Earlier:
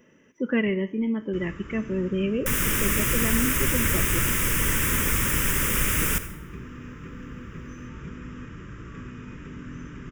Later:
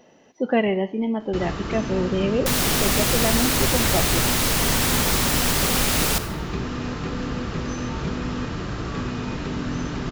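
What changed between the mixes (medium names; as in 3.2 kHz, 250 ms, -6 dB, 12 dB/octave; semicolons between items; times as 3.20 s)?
first sound +10.0 dB; master: remove static phaser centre 1.8 kHz, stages 4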